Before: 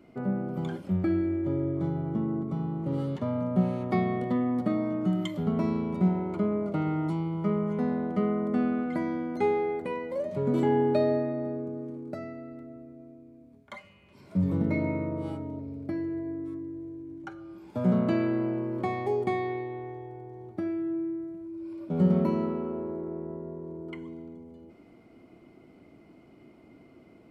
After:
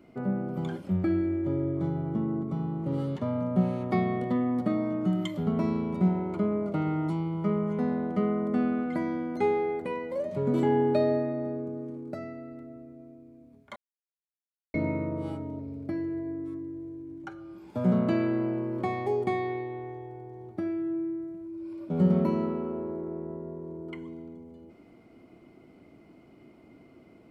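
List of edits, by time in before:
0:13.76–0:14.74: silence

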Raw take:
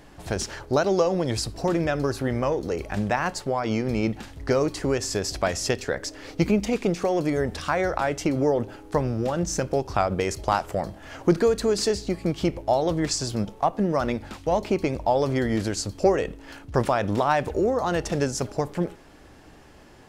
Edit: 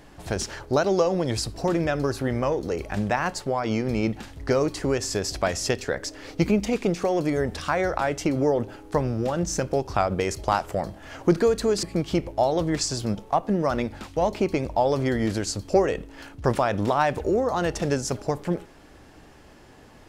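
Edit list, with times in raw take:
0:11.83–0:12.13: remove

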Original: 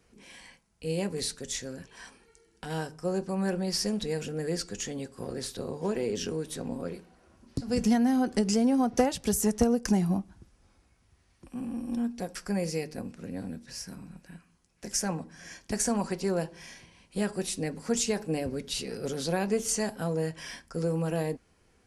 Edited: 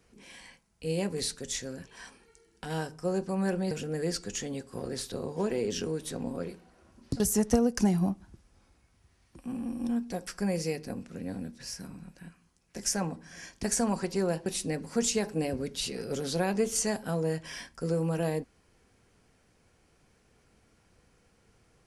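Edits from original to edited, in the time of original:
0:03.71–0:04.16: remove
0:07.65–0:09.28: remove
0:16.54–0:17.39: remove

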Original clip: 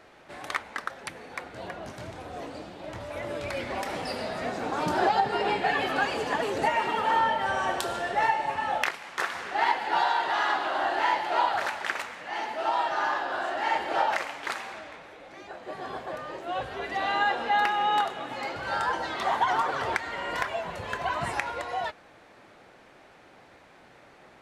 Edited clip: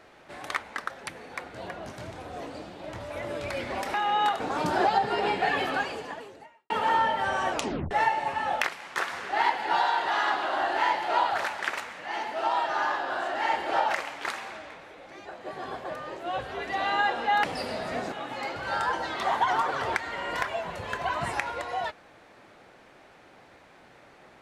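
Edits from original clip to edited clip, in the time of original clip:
0:03.94–0:04.62: swap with 0:17.66–0:18.12
0:05.88–0:06.92: fade out quadratic
0:07.73: tape stop 0.40 s

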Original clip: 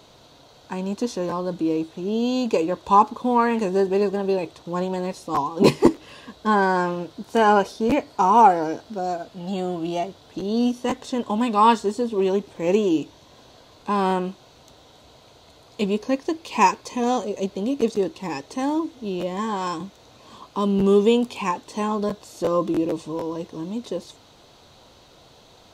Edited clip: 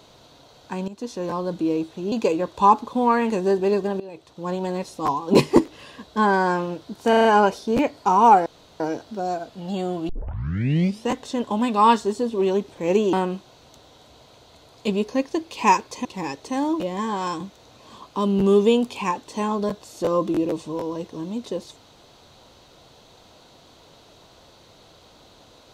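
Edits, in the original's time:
0:00.88–0:01.35: fade in, from −14.5 dB
0:02.12–0:02.41: remove
0:04.29–0:04.94: fade in linear, from −21.5 dB
0:07.38: stutter 0.04 s, 5 plays
0:08.59: splice in room tone 0.34 s
0:09.88: tape start 1.01 s
0:12.92–0:14.07: remove
0:16.99–0:18.11: remove
0:18.86–0:19.20: remove

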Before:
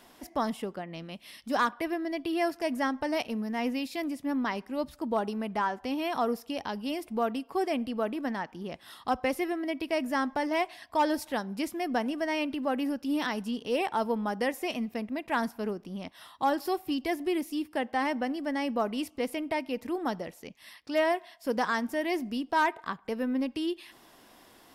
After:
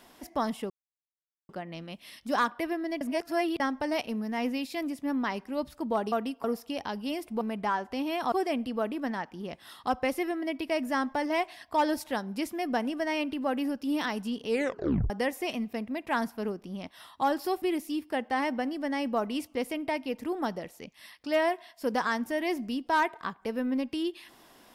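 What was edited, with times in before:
0:00.70: splice in silence 0.79 s
0:02.22–0:02.81: reverse
0:05.33–0:06.24: swap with 0:07.21–0:07.53
0:13.69: tape stop 0.62 s
0:16.83–0:17.25: remove

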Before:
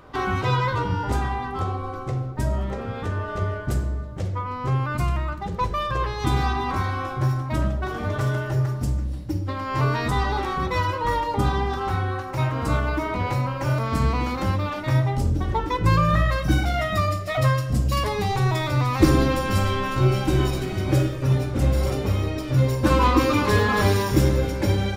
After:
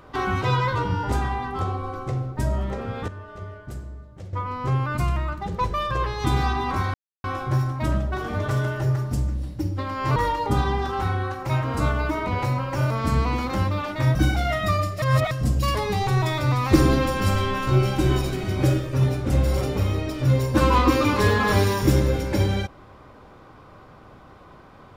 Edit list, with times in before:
0:03.08–0:04.33: clip gain −11 dB
0:06.94: splice in silence 0.30 s
0:09.86–0:11.04: remove
0:15.03–0:16.44: remove
0:17.31–0:17.60: reverse

